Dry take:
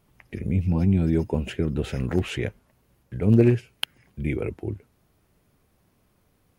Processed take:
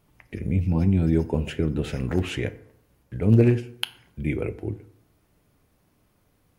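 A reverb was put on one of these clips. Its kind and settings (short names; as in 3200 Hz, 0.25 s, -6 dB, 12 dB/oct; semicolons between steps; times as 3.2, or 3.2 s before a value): FDN reverb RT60 0.7 s, low-frequency decay 0.95×, high-frequency decay 0.6×, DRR 11.5 dB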